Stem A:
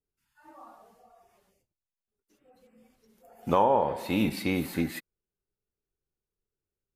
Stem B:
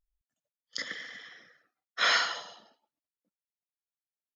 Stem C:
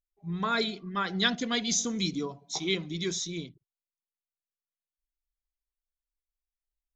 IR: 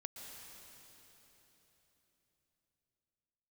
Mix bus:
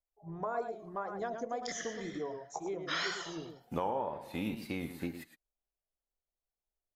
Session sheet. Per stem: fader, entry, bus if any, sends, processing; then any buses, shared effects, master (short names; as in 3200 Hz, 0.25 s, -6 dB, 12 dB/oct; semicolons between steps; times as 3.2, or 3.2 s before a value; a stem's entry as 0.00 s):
-1.5 dB, 0.25 s, no send, echo send -12.5 dB, upward expander 1.5:1, over -45 dBFS
-2.5 dB, 0.90 s, no send, no echo send, dry
-4.5 dB, 0.00 s, no send, echo send -8.5 dB, EQ curve 120 Hz 0 dB, 200 Hz -9 dB, 660 Hz +14 dB, 3800 Hz -28 dB, 6200 Hz -7 dB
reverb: off
echo: echo 0.109 s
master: vibrato 2 Hz 77 cents; compressor 2:1, threshold -38 dBFS, peak gain reduction 10.5 dB